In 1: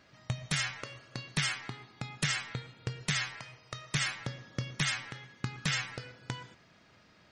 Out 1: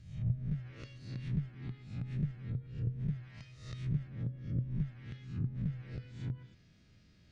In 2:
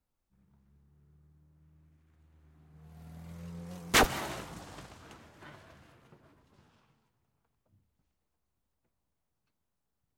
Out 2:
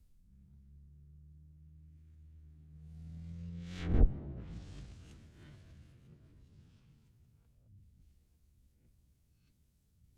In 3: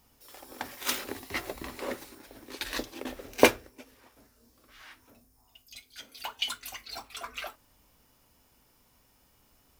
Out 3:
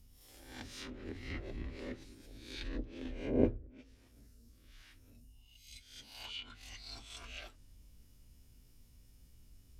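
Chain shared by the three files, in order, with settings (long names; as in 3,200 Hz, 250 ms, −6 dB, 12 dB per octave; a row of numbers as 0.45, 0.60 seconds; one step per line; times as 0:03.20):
peak hold with a rise ahead of every peak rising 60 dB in 0.60 s
reversed playback
upward compression, threshold −53 dBFS
reversed playback
guitar amp tone stack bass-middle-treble 10-0-1
treble cut that deepens with the level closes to 620 Hz, closed at −45 dBFS
level +12.5 dB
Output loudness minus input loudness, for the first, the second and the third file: −4.0, −8.0, −9.5 LU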